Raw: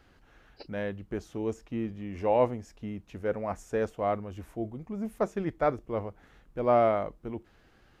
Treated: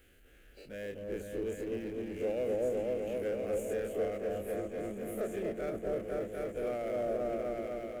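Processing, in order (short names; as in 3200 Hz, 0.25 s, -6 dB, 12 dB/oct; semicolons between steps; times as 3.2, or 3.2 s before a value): spectral dilation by 60 ms; tilt shelf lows -7.5 dB, about 1400 Hz; fixed phaser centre 2300 Hz, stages 4; repeats that get brighter 0.249 s, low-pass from 750 Hz, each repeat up 1 oct, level 0 dB; limiter -25 dBFS, peak gain reduction 8 dB; power-law curve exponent 0.7; ten-band EQ 125 Hz -9 dB, 250 Hz -3 dB, 500 Hz +5 dB, 1000 Hz -9 dB, 2000 Hz -6 dB, 4000 Hz -9 dB; upward expander 1.5:1, over -43 dBFS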